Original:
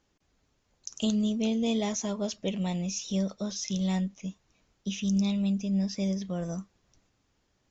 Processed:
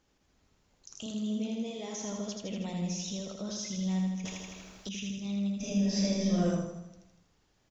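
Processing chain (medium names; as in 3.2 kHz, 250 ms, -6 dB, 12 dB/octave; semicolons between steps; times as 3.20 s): 1.06–2.00 s: high-pass 210 Hz; peak limiter -31.5 dBFS, peak gain reduction 13.5 dB; feedback delay 80 ms, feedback 59%, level -3.5 dB; 4.25–4.89 s: spectrum-flattening compressor 2:1; 5.56–6.47 s: reverb throw, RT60 0.89 s, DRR -8.5 dB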